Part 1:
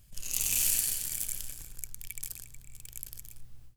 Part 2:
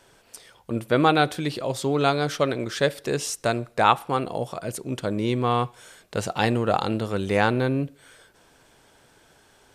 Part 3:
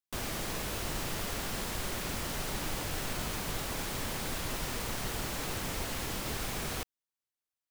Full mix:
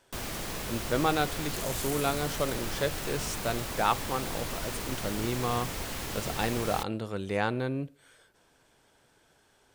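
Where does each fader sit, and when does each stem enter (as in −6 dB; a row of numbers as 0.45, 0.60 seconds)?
−12.0, −8.0, 0.0 decibels; 1.20, 0.00, 0.00 seconds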